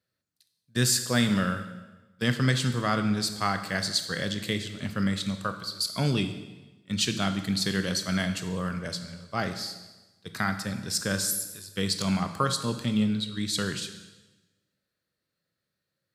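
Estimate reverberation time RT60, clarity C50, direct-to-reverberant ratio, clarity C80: 1.1 s, 10.0 dB, 7.5 dB, 12.0 dB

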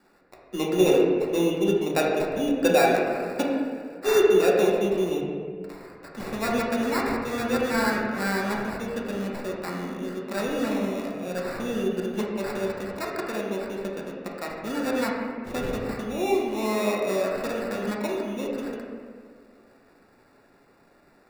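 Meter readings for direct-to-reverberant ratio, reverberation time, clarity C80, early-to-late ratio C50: -3.5 dB, 1.9 s, 2.5 dB, 0.5 dB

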